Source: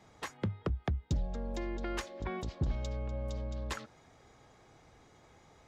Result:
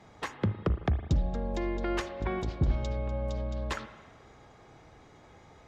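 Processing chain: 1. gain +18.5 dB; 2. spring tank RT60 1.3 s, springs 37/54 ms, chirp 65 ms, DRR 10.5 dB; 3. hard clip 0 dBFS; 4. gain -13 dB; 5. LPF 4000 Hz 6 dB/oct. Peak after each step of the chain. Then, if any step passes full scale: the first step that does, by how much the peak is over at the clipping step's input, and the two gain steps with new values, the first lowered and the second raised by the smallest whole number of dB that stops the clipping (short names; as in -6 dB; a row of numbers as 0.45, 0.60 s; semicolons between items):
-5.0, -4.5, -4.5, -17.5, -17.5 dBFS; no overload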